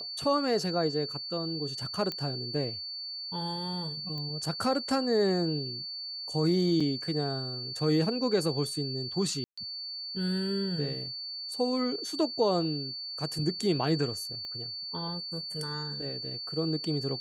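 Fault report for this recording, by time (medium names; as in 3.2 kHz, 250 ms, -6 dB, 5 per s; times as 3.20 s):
whine 4.5 kHz -36 dBFS
2.12 s: pop -19 dBFS
4.18 s: pop -27 dBFS
6.80 s: dropout 5 ms
9.44–9.57 s: dropout 135 ms
14.45 s: pop -29 dBFS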